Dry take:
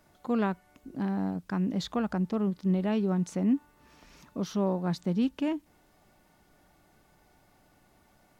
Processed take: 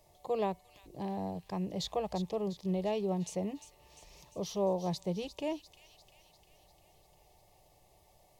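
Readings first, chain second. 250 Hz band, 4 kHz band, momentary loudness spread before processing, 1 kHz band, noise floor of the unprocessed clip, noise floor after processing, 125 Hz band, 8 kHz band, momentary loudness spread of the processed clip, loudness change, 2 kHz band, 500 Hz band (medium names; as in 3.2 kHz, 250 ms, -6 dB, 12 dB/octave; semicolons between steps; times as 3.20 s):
-9.5 dB, 0.0 dB, 7 LU, -1.5 dB, -64 dBFS, -65 dBFS, -7.0 dB, no reading, 13 LU, -6.0 dB, -9.0 dB, 0.0 dB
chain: static phaser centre 600 Hz, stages 4; feedback echo behind a high-pass 349 ms, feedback 59%, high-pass 2.7 kHz, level -10 dB; trim +1.5 dB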